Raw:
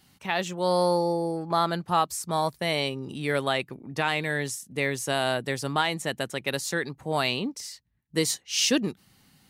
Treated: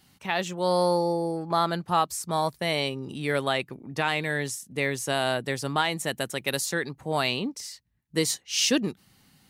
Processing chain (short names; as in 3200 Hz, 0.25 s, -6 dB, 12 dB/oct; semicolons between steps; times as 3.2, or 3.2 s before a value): 5.94–6.64 high shelf 11000 Hz -> 6100 Hz +9 dB